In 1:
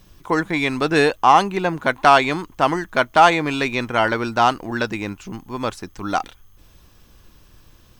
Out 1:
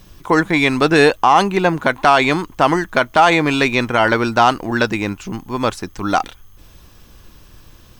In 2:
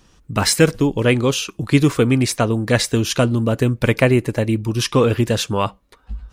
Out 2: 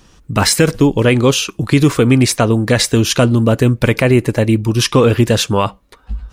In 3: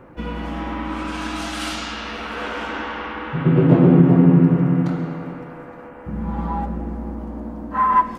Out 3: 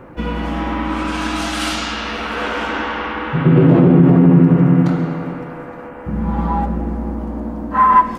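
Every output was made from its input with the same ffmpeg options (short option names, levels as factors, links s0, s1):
-af "alimiter=level_in=2.24:limit=0.891:release=50:level=0:latency=1,volume=0.891"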